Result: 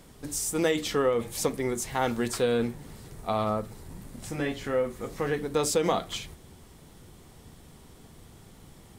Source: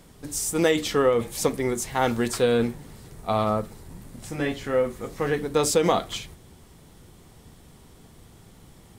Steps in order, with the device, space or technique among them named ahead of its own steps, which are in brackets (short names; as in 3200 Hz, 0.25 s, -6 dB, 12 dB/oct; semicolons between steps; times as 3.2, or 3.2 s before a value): de-hum 56.53 Hz, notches 3; parallel compression (in parallel at -1 dB: compressor, threshold -31 dBFS, peak gain reduction 14.5 dB); on the sum: gain -6 dB